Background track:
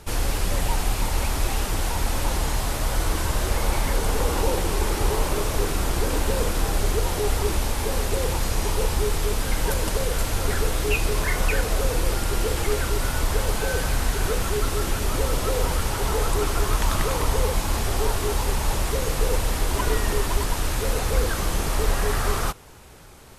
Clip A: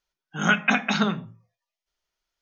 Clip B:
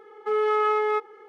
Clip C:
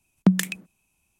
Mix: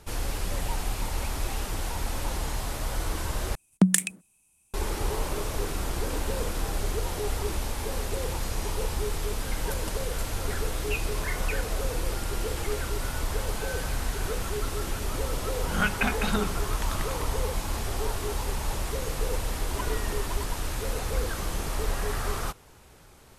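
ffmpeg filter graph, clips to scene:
-filter_complex "[0:a]volume=-6.5dB[a];[3:a]equalizer=f=9k:w=1.5:g=14.5[b];[1:a]lowpass=5.4k[c];[a]asplit=2[d][e];[d]atrim=end=3.554[f];[b]atrim=end=1.19,asetpts=PTS-STARTPTS,volume=-2dB[g];[e]atrim=start=4.736[h];[c]atrim=end=2.41,asetpts=PTS-STARTPTS,volume=-6dB,afade=t=in:d=0.004:c=hsin,afade=t=out:st=2.406:d=0.004:c=hsin,adelay=15330[i];[f][g]acrossfade=d=0.004:c1=hsin:c2=hsin[j];[j][h]acrossfade=d=0.004:c1=hsin:c2=hsin[k];[k][i]amix=inputs=2:normalize=0"

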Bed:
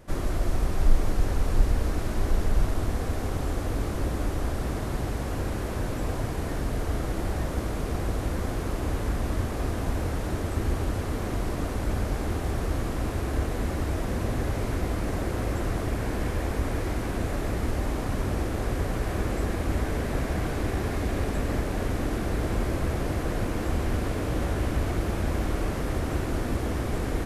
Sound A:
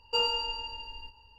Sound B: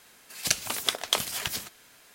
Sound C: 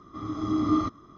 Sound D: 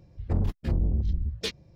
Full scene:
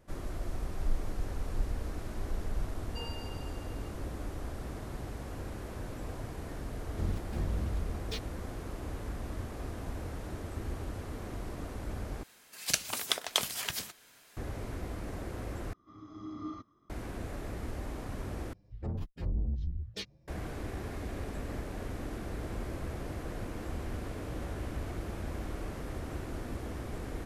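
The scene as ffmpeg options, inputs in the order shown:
-filter_complex "[4:a]asplit=2[a][b];[0:a]volume=-11dB[c];[a]acrusher=bits=6:mix=0:aa=0.5[d];[b]asplit=2[e][f];[f]adelay=8,afreqshift=1.5[g];[e][g]amix=inputs=2:normalize=1[h];[c]asplit=4[i][j][k][l];[i]atrim=end=12.234[m];[2:a]atrim=end=2.14,asetpts=PTS-STARTPTS,volume=-4dB[n];[j]atrim=start=14.366:end=15.734[o];[3:a]atrim=end=1.17,asetpts=PTS-STARTPTS,volume=-17dB[p];[k]atrim=start=16.896:end=18.534[q];[h]atrim=end=1.75,asetpts=PTS-STARTPTS,volume=-5.5dB[r];[l]atrim=start=20.276[s];[1:a]atrim=end=1.38,asetpts=PTS-STARTPTS,volume=-17.5dB,afade=t=in:d=0.004:c=hsin,afade=t=out:st=1.376:d=0.004:c=hsin,adelay=2820[t];[d]atrim=end=1.75,asetpts=PTS-STARTPTS,volume=-8.5dB,afade=t=in:d=0.004:c=hsin,afade=t=out:st=1.746:d=0.004:c=hsin,adelay=6680[u];[m][n]acrossfade=d=0.004:c1=hsin:c2=hsin[v];[v][o]acrossfade=d=0.004:c1=hsin:c2=hsin[w];[w][p]acrossfade=d=0.004:c1=hsin:c2=hsin[x];[x][q]acrossfade=d=0.004:c1=hsin:c2=hsin[y];[y][r]acrossfade=d=0.004:c1=hsin:c2=hsin[z];[z][s]acrossfade=d=0.004:c1=hsin:c2=hsin[aa];[aa][t][u]amix=inputs=3:normalize=0"

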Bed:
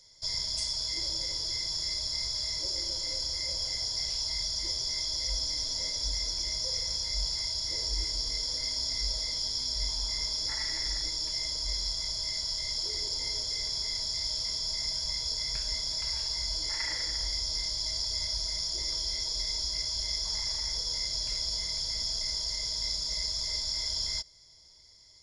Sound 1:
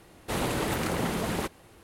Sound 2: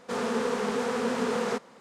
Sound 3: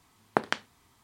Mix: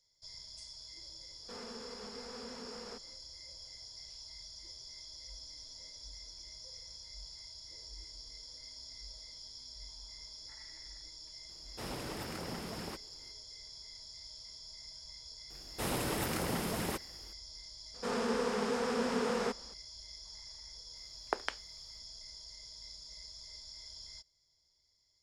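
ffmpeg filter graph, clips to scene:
-filter_complex "[2:a]asplit=2[a][b];[1:a]asplit=2[c][d];[0:a]volume=-17.5dB[e];[a]acompressor=threshold=-30dB:ratio=3:attack=0.11:release=582:knee=1:detection=peak[f];[d]highshelf=f=8.3k:g=8[g];[3:a]highpass=f=330:w=0.5412,highpass=f=330:w=1.3066[h];[f]atrim=end=1.8,asetpts=PTS-STARTPTS,volume=-12.5dB,afade=t=in:d=0.1,afade=t=out:st=1.7:d=0.1,adelay=1400[i];[c]atrim=end=1.83,asetpts=PTS-STARTPTS,volume=-13dB,afade=t=in:d=0.004:c=hsin,afade=t=out:st=1.826:d=0.004:c=hsin,adelay=11490[j];[g]atrim=end=1.83,asetpts=PTS-STARTPTS,volume=-6.5dB,afade=t=in:d=0.004:c=hsin,afade=t=out:st=1.826:d=0.004:c=hsin,adelay=15500[k];[b]atrim=end=1.8,asetpts=PTS-STARTPTS,volume=-5dB,afade=t=in:d=0.004:c=hsin,afade=t=out:st=1.796:d=0.004:c=hsin,adelay=17940[l];[h]atrim=end=1.03,asetpts=PTS-STARTPTS,volume=-8dB,afade=t=in:d=0.004:c=hsin,afade=t=out:st=1.026:d=0.004:c=hsin,adelay=20960[m];[e][i][j][k][l][m]amix=inputs=6:normalize=0"

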